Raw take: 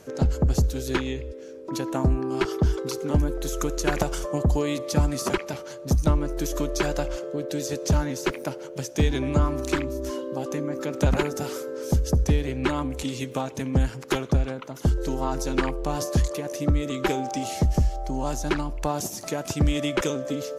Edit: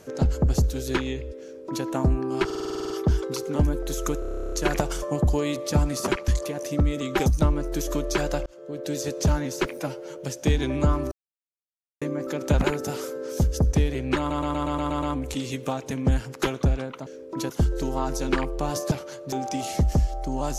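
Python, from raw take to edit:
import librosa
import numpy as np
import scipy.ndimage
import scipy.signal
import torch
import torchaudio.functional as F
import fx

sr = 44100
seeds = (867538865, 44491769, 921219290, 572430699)

y = fx.edit(x, sr, fx.duplicate(start_s=1.42, length_s=0.43, to_s=14.75),
    fx.stutter(start_s=2.45, slice_s=0.05, count=10),
    fx.stutter(start_s=3.74, slice_s=0.03, count=12),
    fx.swap(start_s=5.5, length_s=0.41, other_s=16.17, other_length_s=0.98),
    fx.fade_in_span(start_s=7.11, length_s=0.46),
    fx.stretch_span(start_s=8.43, length_s=0.25, factor=1.5),
    fx.silence(start_s=9.64, length_s=0.9),
    fx.stutter(start_s=12.71, slice_s=0.12, count=8), tone=tone)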